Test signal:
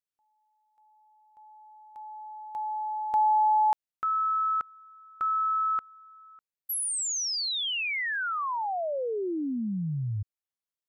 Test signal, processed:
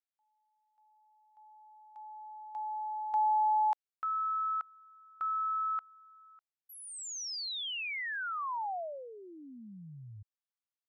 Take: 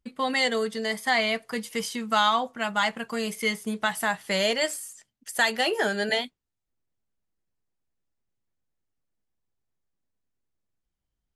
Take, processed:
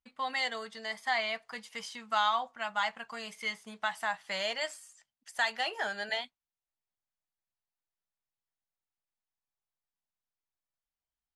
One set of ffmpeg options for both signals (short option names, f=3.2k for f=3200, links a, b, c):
-af "lowpass=6.6k,lowshelf=f=560:t=q:w=1.5:g=-9.5,volume=-7.5dB"